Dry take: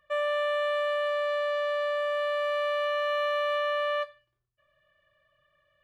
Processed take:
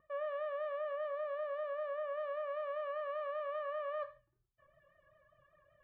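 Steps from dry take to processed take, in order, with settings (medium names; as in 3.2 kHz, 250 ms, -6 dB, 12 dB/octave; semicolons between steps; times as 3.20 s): in parallel at -1 dB: peak limiter -30.5 dBFS, peak gain reduction 10.5 dB; on the sum: reverb removal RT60 0.8 s; vibrato 5.1 Hz 78 cents; low-pass 1.3 kHz 12 dB/octave; reverse; compression 6:1, threshold -38 dBFS, peak gain reduction 13 dB; reverse; gated-style reverb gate 160 ms falling, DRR 10 dB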